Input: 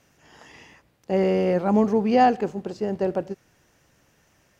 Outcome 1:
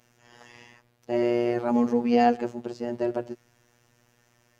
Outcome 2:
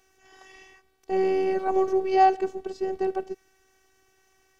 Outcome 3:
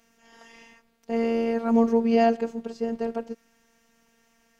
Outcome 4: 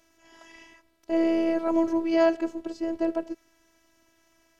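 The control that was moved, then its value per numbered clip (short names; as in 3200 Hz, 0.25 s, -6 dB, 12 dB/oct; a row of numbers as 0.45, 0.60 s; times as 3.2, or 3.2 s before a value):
robotiser, frequency: 120, 380, 230, 330 Hz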